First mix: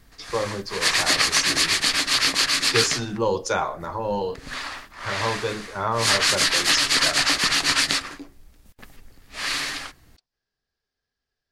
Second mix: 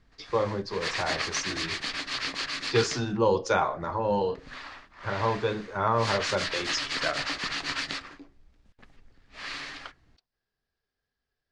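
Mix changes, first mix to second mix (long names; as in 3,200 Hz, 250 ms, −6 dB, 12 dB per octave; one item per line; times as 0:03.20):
background −8.5 dB
master: add high-frequency loss of the air 120 metres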